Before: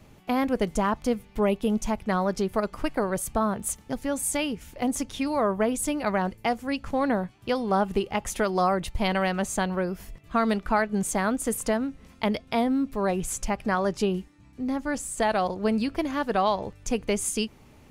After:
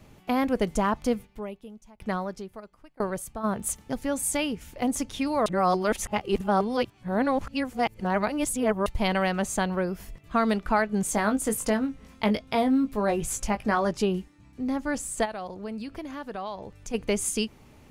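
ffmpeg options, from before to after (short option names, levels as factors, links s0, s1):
-filter_complex "[0:a]asplit=3[s0][s1][s2];[s0]afade=t=out:st=1.25:d=0.02[s3];[s1]aeval=exprs='val(0)*pow(10,-28*if(lt(mod(1*n/s,1),2*abs(1)/1000),1-mod(1*n/s,1)/(2*abs(1)/1000),(mod(1*n/s,1)-2*abs(1)/1000)/(1-2*abs(1)/1000))/20)':c=same,afade=t=in:st=1.25:d=0.02,afade=t=out:st=3.43:d=0.02[s4];[s2]afade=t=in:st=3.43:d=0.02[s5];[s3][s4][s5]amix=inputs=3:normalize=0,asettb=1/sr,asplit=3[s6][s7][s8];[s6]atrim=end=11.094[s9];[s7]atrim=start=11.09:end=13.91,asetpts=PTS-STARTPTS,afade=t=in:d=0.004:c=qsin,afade=t=out:st=2.816:d=0.004:c=qsin,asplit=2[s10][s11];[s11]adelay=19,volume=0.422[s12];[s10][s12]amix=inputs=2:normalize=0,atrim=end_sample=124362[s13];[s8]atrim=start=13.906[s14];[s9][s13]acrossfade=d=0.004:c1=hsin:c2=qsin[s15];[s15][s14]acrossfade=d=0.004:c1=qsin:c2=hsin,asplit=3[s16][s17][s18];[s16]afade=t=out:st=15.24:d=0.02[s19];[s17]acompressor=threshold=0.01:ratio=2:attack=3.2:release=140:knee=1:detection=peak,afade=t=in:st=15.24:d=0.02,afade=t=out:st=16.93:d=0.02[s20];[s18]afade=t=in:st=16.93:d=0.02[s21];[s19][s20][s21]amix=inputs=3:normalize=0,asplit=3[s22][s23][s24];[s22]atrim=end=5.462[s25];[s23]atrim=start=5.458:end=8.862,asetpts=PTS-STARTPTS,areverse[s26];[s24]atrim=start=8.858[s27];[s25][s26]acrossfade=d=0.004:c1=hsin:c2=hsin[s28];[s28][s27]acrossfade=d=0.004:c1=hsin:c2=hsin"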